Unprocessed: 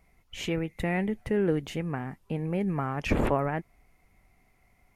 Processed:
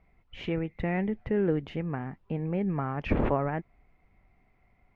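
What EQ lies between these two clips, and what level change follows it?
air absorption 320 m; 0.0 dB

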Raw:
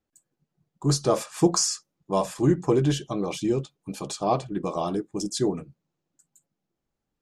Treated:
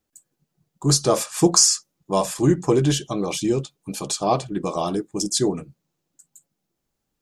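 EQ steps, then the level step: high shelf 4000 Hz +8.5 dB; +3.0 dB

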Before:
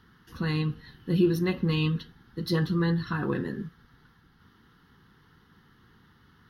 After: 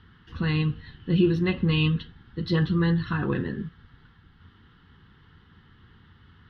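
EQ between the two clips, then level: synth low-pass 3100 Hz, resonance Q 1.9; bell 88 Hz +6.5 dB 0.41 oct; low shelf 120 Hz +8.5 dB; 0.0 dB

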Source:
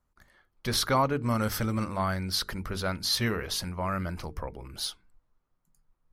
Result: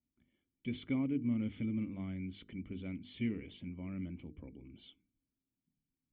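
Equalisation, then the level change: HPF 62 Hz; dynamic EQ 2000 Hz, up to +7 dB, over -54 dBFS, Q 5.8; vocal tract filter i; +1.0 dB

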